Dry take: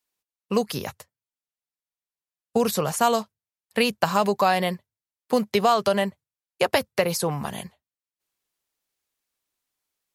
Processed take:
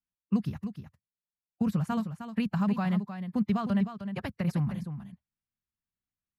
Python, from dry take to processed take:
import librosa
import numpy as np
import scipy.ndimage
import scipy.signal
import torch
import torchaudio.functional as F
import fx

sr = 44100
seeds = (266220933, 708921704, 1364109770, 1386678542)

p1 = fx.curve_eq(x, sr, hz=(200.0, 460.0, 1500.0, 6900.0), db=(0, -23, -14, -27))
p2 = fx.stretch_vocoder(p1, sr, factor=0.63)
p3 = p2 + fx.echo_single(p2, sr, ms=309, db=-9.5, dry=0)
y = F.gain(torch.from_numpy(p3), 3.5).numpy()